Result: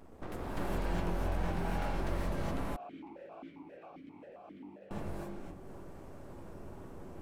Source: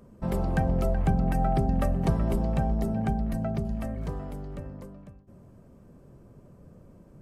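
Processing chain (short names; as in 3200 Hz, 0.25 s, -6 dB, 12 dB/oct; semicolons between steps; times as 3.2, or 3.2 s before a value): one-sided fold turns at -25.5 dBFS; compressor 4:1, threshold -38 dBFS, peak gain reduction 15 dB; flange 0.33 Hz, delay 8.2 ms, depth 6.2 ms, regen +35%; full-wave rectifier; non-linear reverb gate 0.44 s rising, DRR -7 dB; 2.76–4.91 vowel sequencer 7.5 Hz; gain +3.5 dB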